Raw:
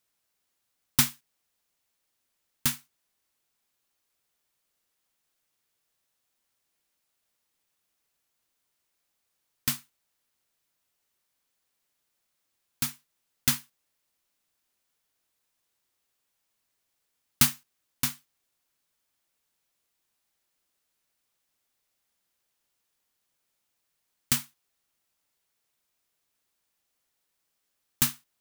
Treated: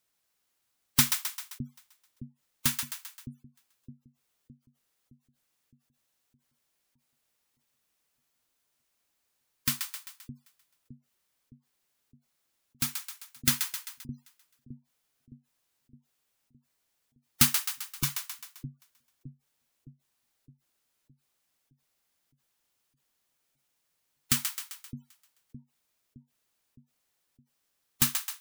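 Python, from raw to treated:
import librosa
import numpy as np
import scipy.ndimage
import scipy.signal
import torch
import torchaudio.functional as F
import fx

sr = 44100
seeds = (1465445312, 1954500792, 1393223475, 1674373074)

y = fx.echo_split(x, sr, split_hz=730.0, low_ms=614, high_ms=131, feedback_pct=52, wet_db=-7)
y = fx.spec_gate(y, sr, threshold_db=-20, keep='strong')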